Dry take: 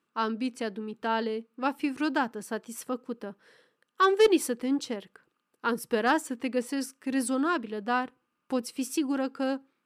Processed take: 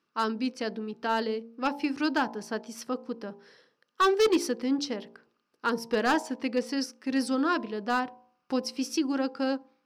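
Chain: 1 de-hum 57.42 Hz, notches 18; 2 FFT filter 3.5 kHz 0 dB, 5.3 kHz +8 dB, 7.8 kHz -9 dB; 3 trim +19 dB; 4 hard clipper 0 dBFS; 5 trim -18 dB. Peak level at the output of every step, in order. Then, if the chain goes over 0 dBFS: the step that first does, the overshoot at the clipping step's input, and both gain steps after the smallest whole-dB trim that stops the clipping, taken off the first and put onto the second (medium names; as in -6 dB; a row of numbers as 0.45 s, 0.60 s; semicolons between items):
-13.0 dBFS, -12.5 dBFS, +6.5 dBFS, 0.0 dBFS, -18.0 dBFS; step 3, 6.5 dB; step 3 +12 dB, step 5 -11 dB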